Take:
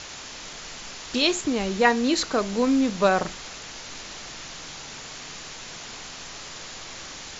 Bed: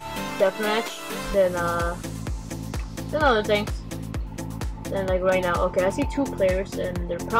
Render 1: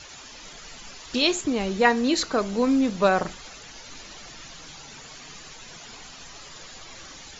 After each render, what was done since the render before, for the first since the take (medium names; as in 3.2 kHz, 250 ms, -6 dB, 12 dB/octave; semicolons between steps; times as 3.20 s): noise reduction 11 dB, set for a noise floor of -40 dBFS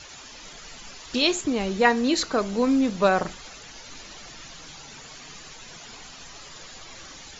no audible change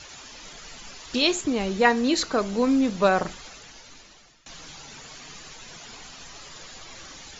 3.38–4.46 s: fade out, to -22 dB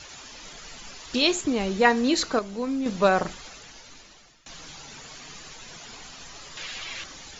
2.39–2.86 s: gain -7 dB; 6.57–7.04 s: peaking EQ 2.6 kHz +12.5 dB 1.6 oct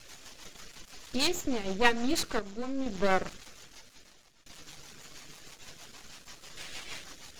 half-wave rectifier; rotary cabinet horn 6.3 Hz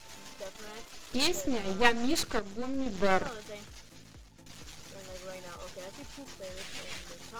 add bed -23.5 dB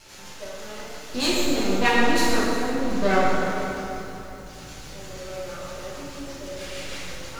plate-style reverb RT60 2.9 s, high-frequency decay 0.55×, DRR -7.5 dB; bit-crushed delay 361 ms, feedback 55%, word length 7-bit, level -15 dB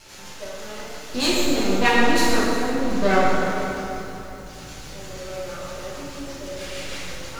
trim +2 dB